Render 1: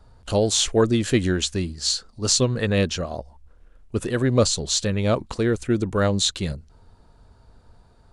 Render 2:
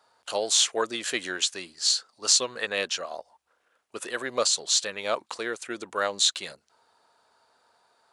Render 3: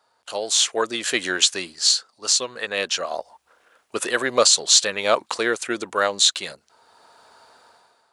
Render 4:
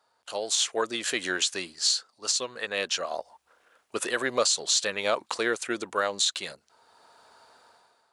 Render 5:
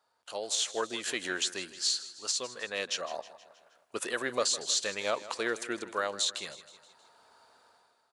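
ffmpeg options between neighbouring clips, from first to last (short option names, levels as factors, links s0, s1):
-af "highpass=750"
-af "dynaudnorm=f=220:g=5:m=5.31,volume=0.891"
-af "alimiter=limit=0.355:level=0:latency=1:release=83,volume=0.596"
-af "aecho=1:1:158|316|474|632|790:0.158|0.0856|0.0462|0.025|0.0135,volume=0.562"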